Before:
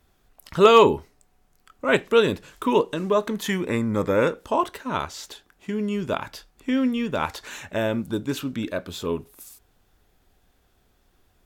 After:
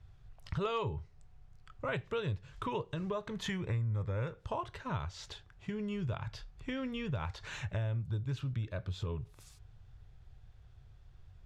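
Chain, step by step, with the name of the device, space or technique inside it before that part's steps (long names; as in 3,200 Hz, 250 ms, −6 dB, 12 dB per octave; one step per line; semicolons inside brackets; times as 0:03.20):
jukebox (low-pass filter 5,300 Hz 12 dB per octave; low shelf with overshoot 170 Hz +12.5 dB, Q 3; downward compressor 4 to 1, threshold −30 dBFS, peak gain reduction 16.5 dB)
level −5 dB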